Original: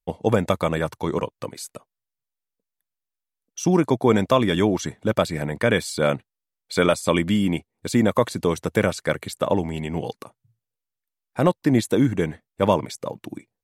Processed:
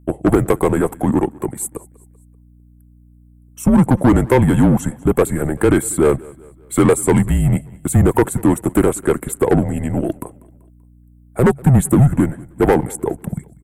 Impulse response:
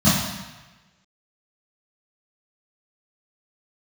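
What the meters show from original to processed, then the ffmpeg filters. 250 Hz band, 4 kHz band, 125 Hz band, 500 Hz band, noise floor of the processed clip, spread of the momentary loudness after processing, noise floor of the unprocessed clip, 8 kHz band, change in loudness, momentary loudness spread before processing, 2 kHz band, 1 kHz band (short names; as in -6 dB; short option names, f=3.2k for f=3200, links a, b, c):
+7.5 dB, -8.0 dB, +10.0 dB, +4.5 dB, -48 dBFS, 11 LU, under -85 dBFS, +9.5 dB, +6.0 dB, 14 LU, +1.0 dB, +3.5 dB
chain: -filter_complex "[0:a]firequalizer=gain_entry='entry(180,0);entry(260,13);entry(5000,-18);entry(8100,14)':delay=0.05:min_phase=1,acontrast=35,afreqshift=-140,aeval=exprs='val(0)+0.01*(sin(2*PI*60*n/s)+sin(2*PI*2*60*n/s)/2+sin(2*PI*3*60*n/s)/3+sin(2*PI*4*60*n/s)/4+sin(2*PI*5*60*n/s)/5)':c=same,asplit=2[a][b];[b]aecho=0:1:193|386|579:0.0708|0.0326|0.015[c];[a][c]amix=inputs=2:normalize=0,volume=-5.5dB"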